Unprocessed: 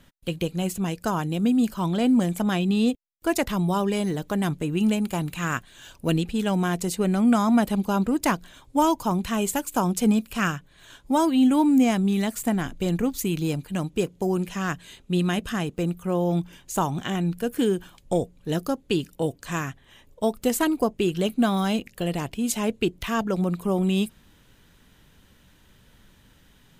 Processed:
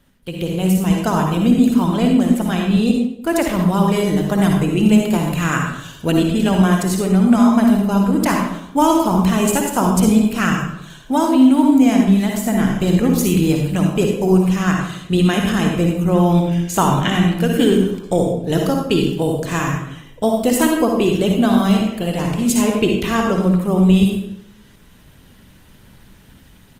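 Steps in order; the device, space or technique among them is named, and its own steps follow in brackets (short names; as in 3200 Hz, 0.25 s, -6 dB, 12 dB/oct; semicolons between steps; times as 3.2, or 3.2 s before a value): 16.14–17.68 bell 2400 Hz +5 dB 1.9 oct; speakerphone in a meeting room (reverb RT60 0.75 s, pre-delay 50 ms, DRR 1.5 dB; speakerphone echo 0.14 s, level -17 dB; AGC gain up to 9 dB; gain -1 dB; Opus 24 kbps 48000 Hz)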